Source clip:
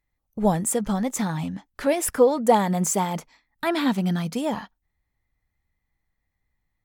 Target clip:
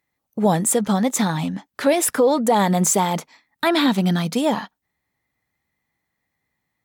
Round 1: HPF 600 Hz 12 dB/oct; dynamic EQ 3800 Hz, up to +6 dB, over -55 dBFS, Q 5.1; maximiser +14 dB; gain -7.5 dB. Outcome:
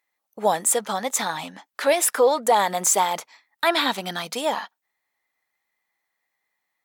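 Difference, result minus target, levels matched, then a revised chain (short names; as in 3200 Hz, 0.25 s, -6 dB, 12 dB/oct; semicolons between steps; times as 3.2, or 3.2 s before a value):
125 Hz band -16.5 dB
HPF 160 Hz 12 dB/oct; dynamic EQ 3800 Hz, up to +6 dB, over -55 dBFS, Q 5.1; maximiser +14 dB; gain -7.5 dB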